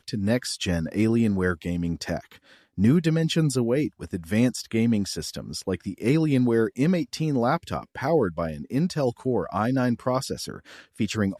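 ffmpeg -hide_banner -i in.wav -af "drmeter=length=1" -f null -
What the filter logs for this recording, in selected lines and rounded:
Channel 1: DR: 9.4
Overall DR: 9.4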